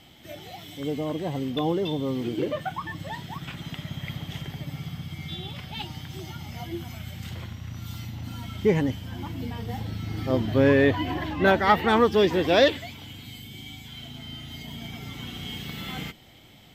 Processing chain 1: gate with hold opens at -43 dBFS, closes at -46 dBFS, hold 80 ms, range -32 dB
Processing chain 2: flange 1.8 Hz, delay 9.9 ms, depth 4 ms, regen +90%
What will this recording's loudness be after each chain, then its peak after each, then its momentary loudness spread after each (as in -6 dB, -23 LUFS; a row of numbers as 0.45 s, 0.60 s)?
-27.0 LUFS, -31.5 LUFS; -6.5 dBFS, -11.0 dBFS; 19 LU, 19 LU